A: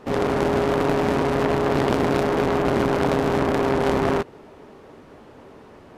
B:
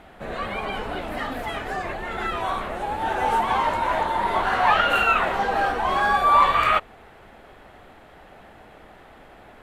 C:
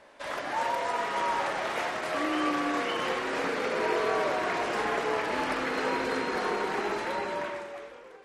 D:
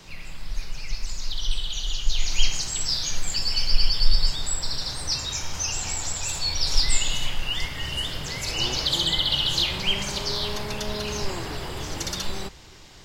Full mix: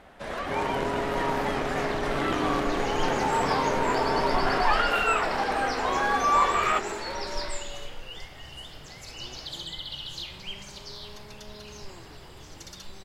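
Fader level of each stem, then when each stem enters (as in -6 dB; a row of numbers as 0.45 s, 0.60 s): -10.0 dB, -5.5 dB, -3.0 dB, -14.0 dB; 0.40 s, 0.00 s, 0.00 s, 0.60 s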